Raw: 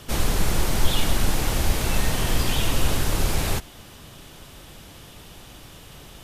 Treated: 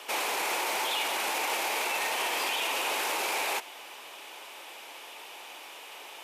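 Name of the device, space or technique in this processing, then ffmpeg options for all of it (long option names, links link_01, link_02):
laptop speaker: -af "highpass=frequency=390:width=0.5412,highpass=frequency=390:width=1.3066,equalizer=frequency=890:width_type=o:width=0.59:gain=9,equalizer=frequency=2400:width_type=o:width=0.58:gain=10,alimiter=limit=-19.5dB:level=0:latency=1:release=12,volume=-2dB"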